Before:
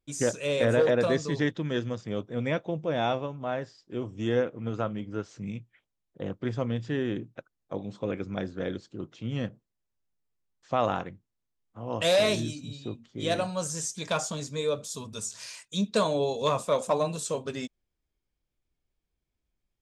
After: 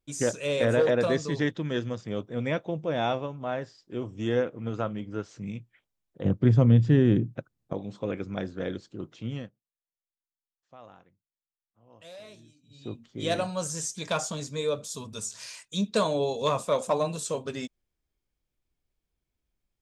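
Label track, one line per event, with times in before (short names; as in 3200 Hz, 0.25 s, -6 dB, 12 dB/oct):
6.250000	7.730000	bell 120 Hz +14.5 dB 2.9 oct
9.280000	12.920000	dip -23.5 dB, fades 0.23 s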